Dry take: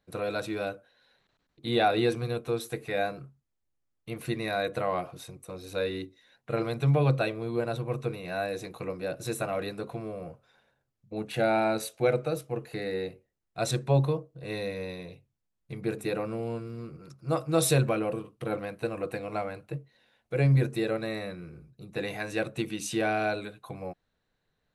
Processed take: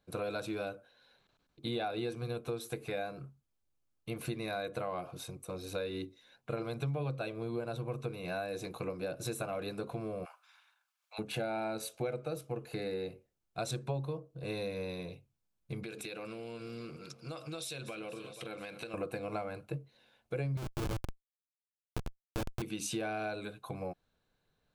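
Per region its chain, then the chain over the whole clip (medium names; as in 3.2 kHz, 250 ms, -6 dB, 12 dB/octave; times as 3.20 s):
10.24–11.18 s: spectral peaks clipped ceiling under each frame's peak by 13 dB + inverse Chebyshev high-pass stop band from 280 Hz, stop band 60 dB + peaking EQ 1.8 kHz +4.5 dB 2 oct
15.83–18.94 s: frequency weighting D + feedback delay 239 ms, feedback 59%, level -23.5 dB + compression 8:1, threshold -39 dBFS
20.57–22.62 s: bass shelf 180 Hz +11 dB + Schmitt trigger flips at -23 dBFS
whole clip: compression 5:1, threshold -34 dBFS; band-stop 1.9 kHz, Q 7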